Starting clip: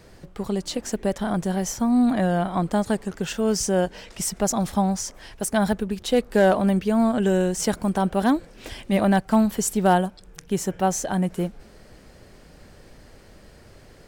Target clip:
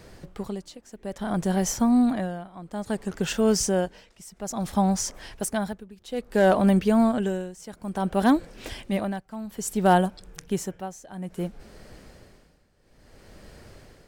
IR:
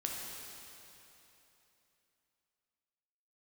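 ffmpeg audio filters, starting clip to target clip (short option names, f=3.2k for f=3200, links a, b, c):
-af "tremolo=f=0.59:d=0.9,volume=1.5dB"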